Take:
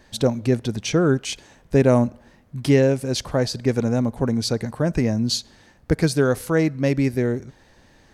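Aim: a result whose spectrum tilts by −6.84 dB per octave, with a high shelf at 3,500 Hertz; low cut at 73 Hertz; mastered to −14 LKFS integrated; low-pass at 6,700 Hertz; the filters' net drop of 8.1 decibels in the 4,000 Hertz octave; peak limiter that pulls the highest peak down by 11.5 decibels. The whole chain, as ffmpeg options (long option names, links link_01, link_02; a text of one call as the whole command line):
ffmpeg -i in.wav -af "highpass=73,lowpass=6700,highshelf=frequency=3500:gain=-6.5,equalizer=frequency=4000:width_type=o:gain=-4.5,volume=13dB,alimiter=limit=-3.5dB:level=0:latency=1" out.wav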